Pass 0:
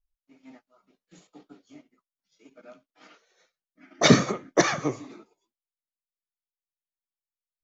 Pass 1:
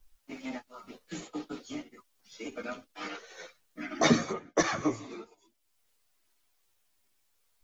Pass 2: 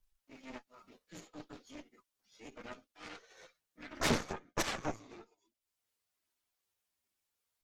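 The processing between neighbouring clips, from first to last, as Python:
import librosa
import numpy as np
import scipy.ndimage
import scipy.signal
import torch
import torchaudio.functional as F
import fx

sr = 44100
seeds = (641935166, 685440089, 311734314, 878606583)

y1 = fx.chorus_voices(x, sr, voices=6, hz=0.33, base_ms=11, depth_ms=2.2, mix_pct=50)
y1 = fx.band_squash(y1, sr, depth_pct=70)
y1 = F.gain(torch.from_numpy(y1), 2.5).numpy()
y2 = fx.transient(y1, sr, attack_db=-6, sustain_db=-2)
y2 = fx.cheby_harmonics(y2, sr, harmonics=(3, 4, 8), levels_db=(-15, -17, -17), full_scale_db=-12.5)
y2 = F.gain(torch.from_numpy(y2), -3.5).numpy()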